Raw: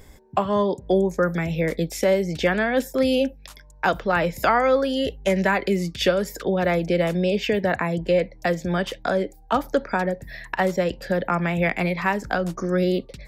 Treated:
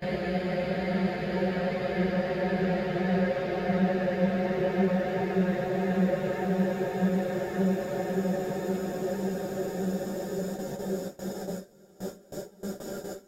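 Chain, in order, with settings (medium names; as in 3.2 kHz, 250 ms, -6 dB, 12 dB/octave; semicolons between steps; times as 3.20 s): slices played last to first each 80 ms, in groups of 7; hum notches 50/100/150 Hz; rotary cabinet horn 5.5 Hz; Paulstretch 37×, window 0.50 s, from 6.19 s; bass shelf 210 Hz +2.5 dB; on a send: echo that smears into a reverb 624 ms, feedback 69%, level -14 dB; on the sum: dynamic bell 160 Hz, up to +4 dB, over -40 dBFS, Q 3.5; gate with hold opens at -18 dBFS; three-phase chorus; trim -2.5 dB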